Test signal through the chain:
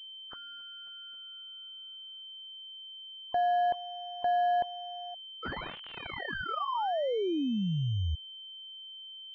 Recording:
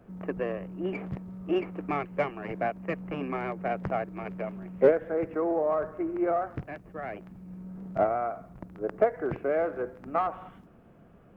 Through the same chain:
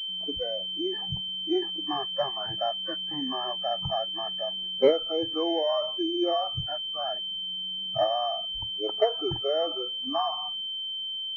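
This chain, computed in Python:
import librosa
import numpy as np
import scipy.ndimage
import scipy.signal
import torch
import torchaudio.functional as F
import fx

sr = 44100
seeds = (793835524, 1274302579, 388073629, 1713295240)

p1 = fx.freq_compress(x, sr, knee_hz=1000.0, ratio=1.5)
p2 = fx.over_compress(p1, sr, threshold_db=-38.0, ratio=-1.0)
p3 = p1 + (p2 * 10.0 ** (-3.0 / 20.0))
p4 = fx.noise_reduce_blind(p3, sr, reduce_db=22)
y = fx.pwm(p4, sr, carrier_hz=3100.0)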